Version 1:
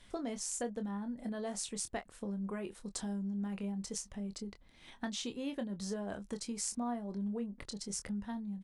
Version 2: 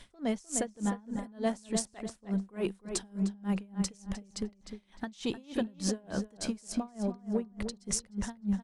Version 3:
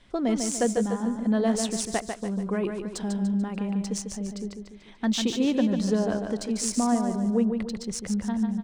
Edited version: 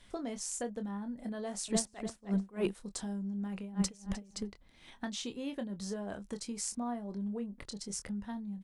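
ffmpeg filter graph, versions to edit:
-filter_complex "[1:a]asplit=2[s0][s1];[0:a]asplit=3[s2][s3][s4];[s2]atrim=end=1.682[s5];[s0]atrim=start=1.678:end=2.732[s6];[s3]atrim=start=2.728:end=3.77[s7];[s1]atrim=start=3.53:end=4.54[s8];[s4]atrim=start=4.3[s9];[s5][s6]acrossfade=d=0.004:c1=hsin:c2=hsin[s10];[s10][s7]acrossfade=d=0.004:c1=hsin:c2=hsin[s11];[s11][s8]acrossfade=d=0.24:c1=tri:c2=tri[s12];[s12][s9]acrossfade=d=0.24:c1=tri:c2=tri"

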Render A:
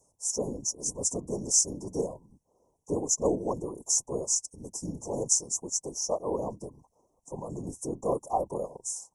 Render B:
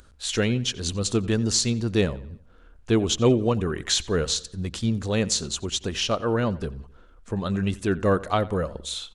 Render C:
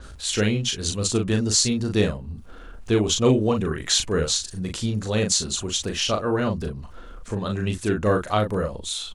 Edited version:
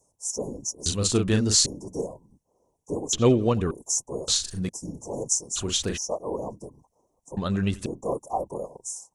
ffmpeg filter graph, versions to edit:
-filter_complex "[2:a]asplit=3[s0][s1][s2];[1:a]asplit=2[s3][s4];[0:a]asplit=6[s5][s6][s7][s8][s9][s10];[s5]atrim=end=0.862[s11];[s0]atrim=start=0.858:end=1.662[s12];[s6]atrim=start=1.658:end=3.132[s13];[s3]atrim=start=3.128:end=3.712[s14];[s7]atrim=start=3.708:end=4.282[s15];[s1]atrim=start=4.278:end=4.692[s16];[s8]atrim=start=4.688:end=5.57[s17];[s2]atrim=start=5.55:end=5.98[s18];[s9]atrim=start=5.96:end=7.372[s19];[s4]atrim=start=7.368:end=7.862[s20];[s10]atrim=start=7.858[s21];[s11][s12]acrossfade=d=0.004:c1=hsin:c2=hsin[s22];[s22][s13]acrossfade=d=0.004:c1=hsin:c2=hsin[s23];[s23][s14]acrossfade=d=0.004:c1=hsin:c2=hsin[s24];[s24][s15]acrossfade=d=0.004:c1=hsin:c2=hsin[s25];[s25][s16]acrossfade=d=0.004:c1=hsin:c2=hsin[s26];[s26][s17]acrossfade=d=0.004:c1=hsin:c2=hsin[s27];[s27][s18]acrossfade=d=0.02:c1=tri:c2=tri[s28];[s28][s19]acrossfade=d=0.02:c1=tri:c2=tri[s29];[s29][s20]acrossfade=d=0.004:c1=hsin:c2=hsin[s30];[s30][s21]acrossfade=d=0.004:c1=hsin:c2=hsin"

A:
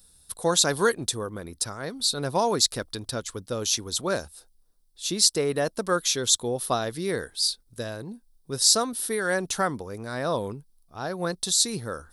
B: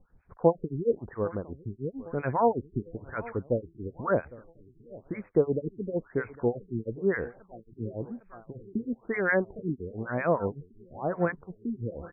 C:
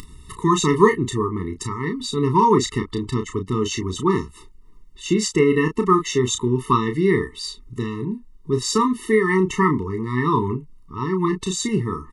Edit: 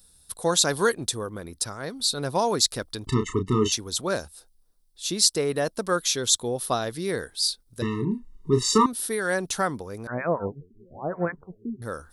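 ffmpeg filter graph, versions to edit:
-filter_complex "[2:a]asplit=2[s0][s1];[0:a]asplit=4[s2][s3][s4][s5];[s2]atrim=end=3.072[s6];[s0]atrim=start=3.068:end=3.722[s7];[s3]atrim=start=3.718:end=7.822[s8];[s1]atrim=start=7.818:end=8.862[s9];[s4]atrim=start=8.858:end=10.072[s10];[1:a]atrim=start=10.068:end=11.822[s11];[s5]atrim=start=11.818[s12];[s6][s7]acrossfade=d=0.004:c1=hsin:c2=hsin[s13];[s13][s8]acrossfade=d=0.004:c1=hsin:c2=hsin[s14];[s14][s9]acrossfade=d=0.004:c1=hsin:c2=hsin[s15];[s15][s10]acrossfade=d=0.004:c1=hsin:c2=hsin[s16];[s16][s11]acrossfade=d=0.004:c1=hsin:c2=hsin[s17];[s17][s12]acrossfade=d=0.004:c1=hsin:c2=hsin"

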